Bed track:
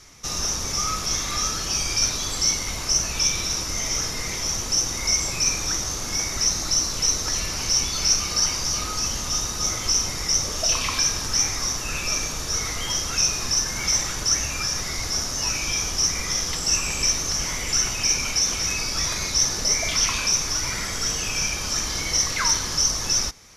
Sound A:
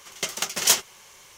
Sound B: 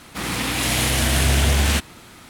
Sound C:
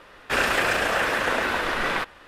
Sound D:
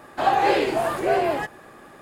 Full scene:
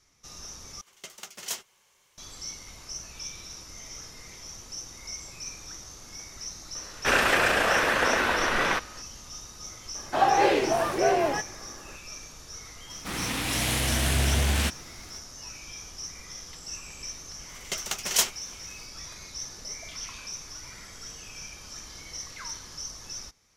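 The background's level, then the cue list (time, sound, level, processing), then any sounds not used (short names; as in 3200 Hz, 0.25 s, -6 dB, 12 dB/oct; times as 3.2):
bed track -17 dB
0.81 replace with A -15 dB
6.75 add C
9.95 add D -2 dB
12.9 add B -6.5 dB
17.49 add A -4.5 dB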